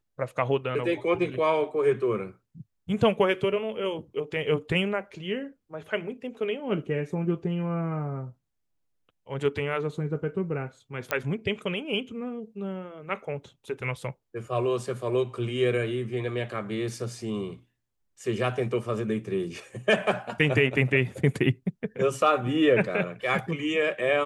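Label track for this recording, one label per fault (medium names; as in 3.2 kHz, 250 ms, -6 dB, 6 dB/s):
11.110000	11.110000	pop -10 dBFS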